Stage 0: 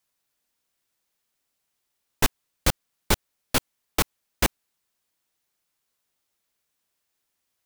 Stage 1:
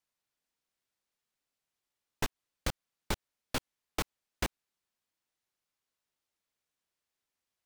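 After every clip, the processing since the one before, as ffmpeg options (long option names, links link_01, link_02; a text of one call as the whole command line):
ffmpeg -i in.wav -af "highshelf=frequency=9400:gain=-9,acompressor=threshold=-20dB:ratio=6,volume=-7.5dB" out.wav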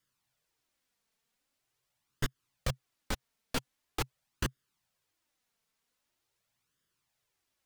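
ffmpeg -i in.wav -af "equalizer=frequency=130:width=3.1:gain=9,alimiter=level_in=2dB:limit=-24dB:level=0:latency=1:release=74,volume=-2dB,flanger=delay=0.6:depth=3.9:regen=-14:speed=0.44:shape=sinusoidal,volume=9.5dB" out.wav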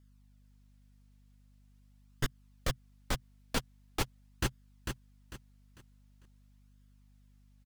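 ffmpeg -i in.wav -af "aecho=1:1:448|896|1344|1792:0.531|0.165|0.051|0.0158,aeval=exprs='val(0)+0.000891*(sin(2*PI*50*n/s)+sin(2*PI*2*50*n/s)/2+sin(2*PI*3*50*n/s)/3+sin(2*PI*4*50*n/s)/4+sin(2*PI*5*50*n/s)/5)':channel_layout=same" out.wav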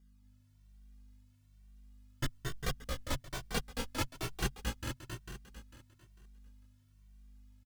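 ffmpeg -i in.wav -filter_complex "[0:a]asplit=2[link_01][link_02];[link_02]aecho=0:1:224|241|259|403|577:0.501|0.398|0.237|0.355|0.119[link_03];[link_01][link_03]amix=inputs=2:normalize=0,asplit=2[link_04][link_05];[link_05]adelay=2.1,afreqshift=1.1[link_06];[link_04][link_06]amix=inputs=2:normalize=1,volume=1dB" out.wav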